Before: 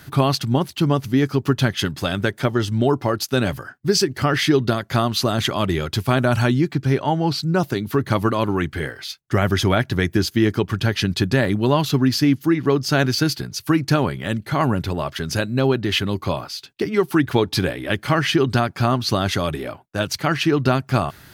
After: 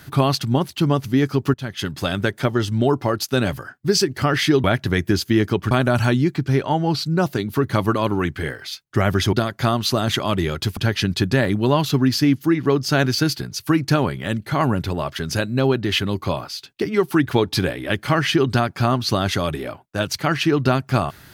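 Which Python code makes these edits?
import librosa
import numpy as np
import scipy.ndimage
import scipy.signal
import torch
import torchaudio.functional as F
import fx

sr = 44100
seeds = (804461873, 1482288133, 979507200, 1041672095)

y = fx.edit(x, sr, fx.fade_in_from(start_s=1.54, length_s=0.47, floor_db=-20.0),
    fx.swap(start_s=4.64, length_s=1.44, other_s=9.7, other_length_s=1.07), tone=tone)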